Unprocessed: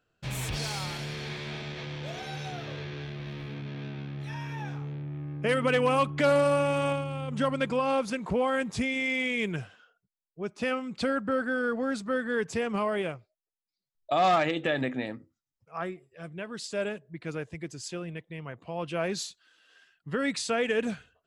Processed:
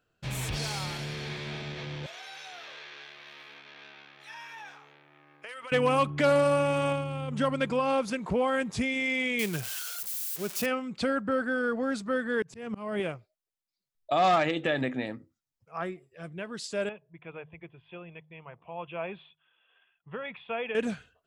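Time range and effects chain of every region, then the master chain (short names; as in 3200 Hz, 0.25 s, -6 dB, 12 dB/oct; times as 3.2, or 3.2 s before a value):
2.06–5.72 HPF 940 Hz + compressor, threshold -39 dBFS
9.39–10.66 switching spikes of -25 dBFS + HPF 50 Hz
12.42–13 bell 130 Hz +13 dB 1.2 oct + auto swell 0.316 s
16.89–20.75 rippled Chebyshev low-pass 3500 Hz, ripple 9 dB + bell 280 Hz -14.5 dB 0.2 oct + de-hum 51.45 Hz, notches 3
whole clip: dry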